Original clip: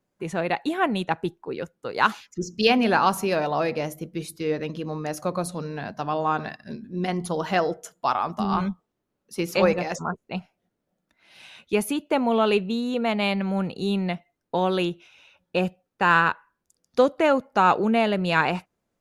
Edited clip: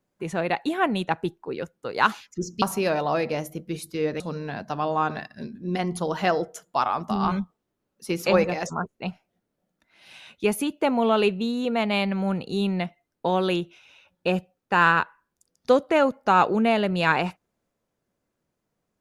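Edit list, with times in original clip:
0:02.62–0:03.08: remove
0:04.66–0:05.49: remove

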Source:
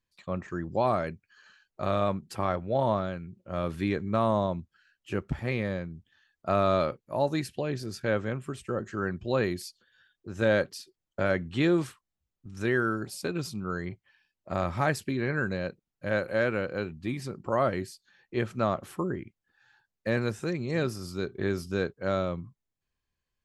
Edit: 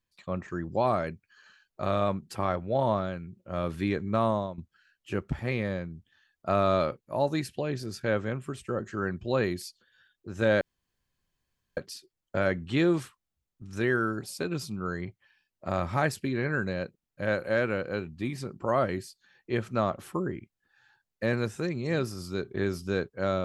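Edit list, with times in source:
0:04.26–0:04.58: fade out linear, to −13.5 dB
0:10.61: splice in room tone 1.16 s

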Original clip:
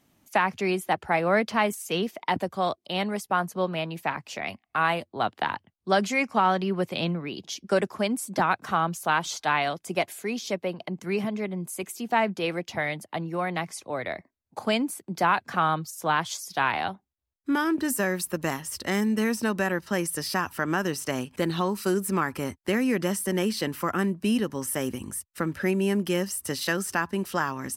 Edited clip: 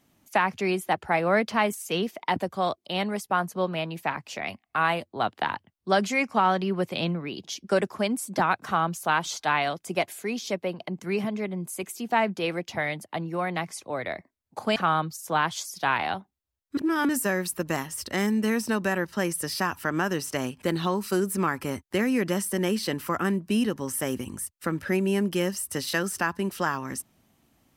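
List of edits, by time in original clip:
0:14.76–0:15.50: remove
0:17.51–0:17.83: reverse

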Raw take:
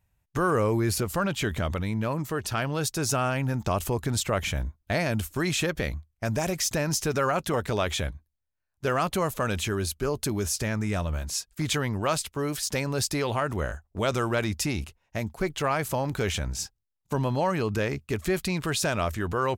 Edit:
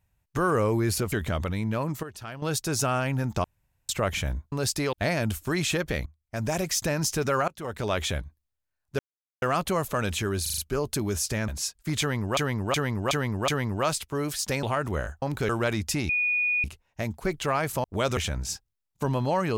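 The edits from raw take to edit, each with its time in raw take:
0:01.12–0:01.42: remove
0:02.33–0:02.72: clip gain −10.5 dB
0:03.74–0:04.19: fill with room tone
0:05.95–0:06.42: fade in, from −18.5 dB
0:07.37–0:07.85: fade in, from −24 dB
0:08.88: splice in silence 0.43 s
0:09.88: stutter 0.04 s, 5 plays
0:10.78–0:11.20: remove
0:11.72–0:12.09: repeat, 5 plays
0:12.87–0:13.28: move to 0:04.82
0:13.87–0:14.20: swap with 0:16.00–0:16.27
0:14.80: insert tone 2,460 Hz −22 dBFS 0.55 s

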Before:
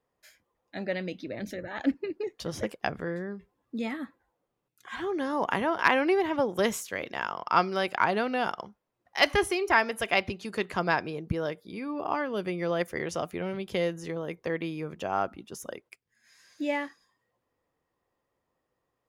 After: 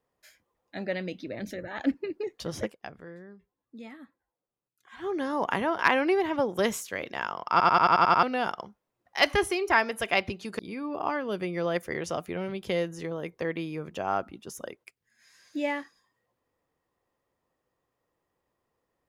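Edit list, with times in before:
0:02.65–0:05.06: duck −11.5 dB, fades 0.40 s exponential
0:07.51: stutter in place 0.09 s, 8 plays
0:10.59–0:11.64: remove

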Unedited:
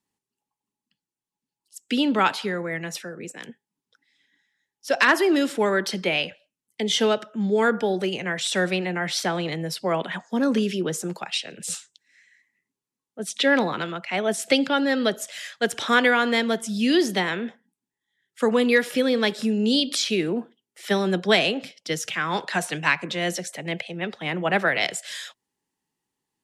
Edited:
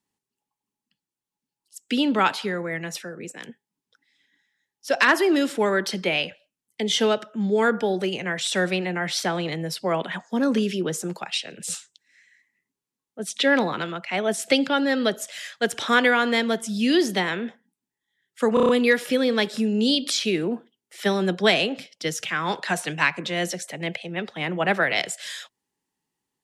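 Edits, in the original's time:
0:18.54: stutter 0.03 s, 6 plays

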